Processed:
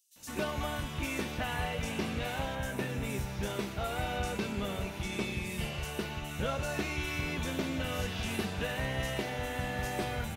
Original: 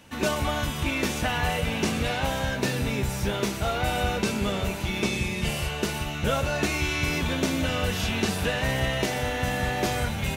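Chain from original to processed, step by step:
0:02.39–0:02.89: parametric band 4,600 Hz −8.5 dB 0.52 octaves
multiband delay without the direct sound highs, lows 160 ms, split 5,200 Hz
level −8 dB

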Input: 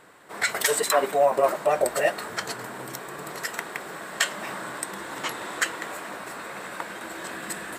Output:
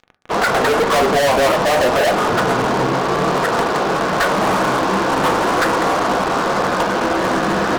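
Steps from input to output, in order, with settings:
low-pass filter 1,300 Hz 24 dB per octave
fuzz pedal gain 40 dB, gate −47 dBFS
convolution reverb RT60 0.60 s, pre-delay 3 ms, DRR 11.5 dB

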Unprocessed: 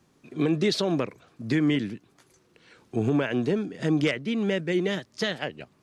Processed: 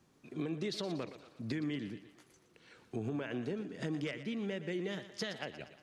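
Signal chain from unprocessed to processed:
downward compressor 3 to 1, threshold −32 dBFS, peak gain reduction 10 dB
feedback echo with a high-pass in the loop 118 ms, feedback 55%, high-pass 250 Hz, level −12 dB
level −5 dB

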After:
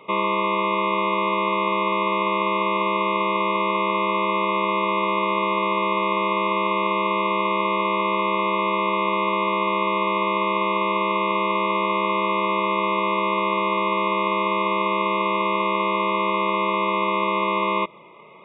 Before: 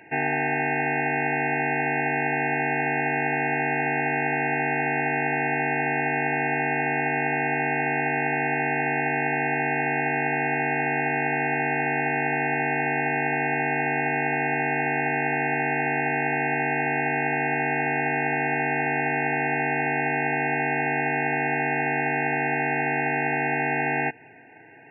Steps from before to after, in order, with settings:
high shelf with overshoot 1,700 Hz −8.5 dB, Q 1.5
wrong playback speed 33 rpm record played at 45 rpm
level +3.5 dB

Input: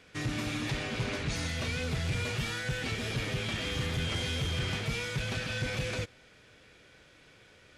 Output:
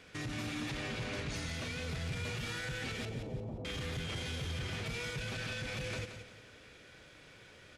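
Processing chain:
brickwall limiter −33 dBFS, peak gain reduction 10.5 dB
0:03.05–0:03.65: Butterworth low-pass 870 Hz 36 dB per octave
repeating echo 175 ms, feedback 34%, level −9 dB
level +1 dB

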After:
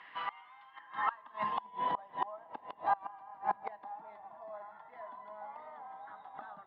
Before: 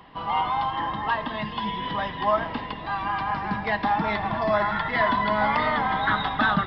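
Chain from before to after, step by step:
gate with flip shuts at −19 dBFS, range −25 dB
band-pass filter sweep 1,900 Hz → 760 Hz, 0:00.73–0:01.75
level +4.5 dB

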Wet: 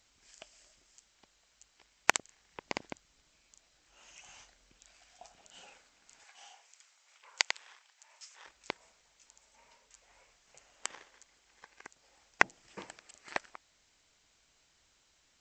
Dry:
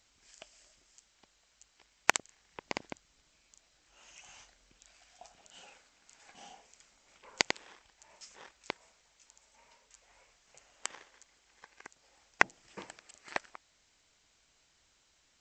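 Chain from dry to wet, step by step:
0:06.24–0:08.46: high-pass filter 940 Hz 12 dB per octave

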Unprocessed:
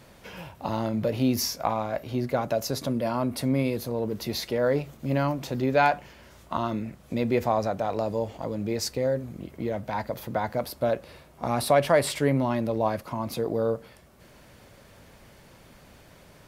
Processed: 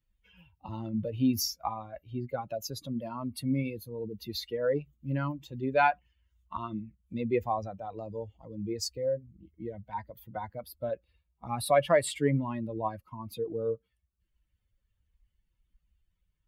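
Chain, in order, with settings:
spectral dynamics exaggerated over time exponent 2
harmonic generator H 3 −37 dB, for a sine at −11 dBFS

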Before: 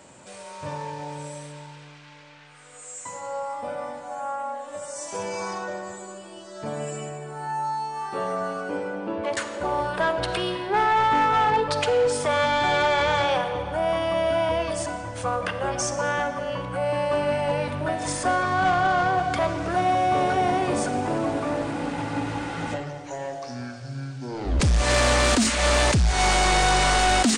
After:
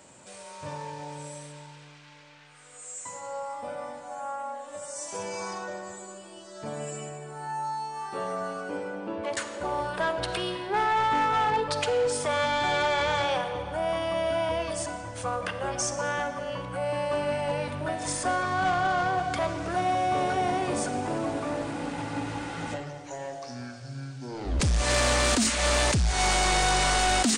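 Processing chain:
high-shelf EQ 4,700 Hz +5 dB
level −4.5 dB

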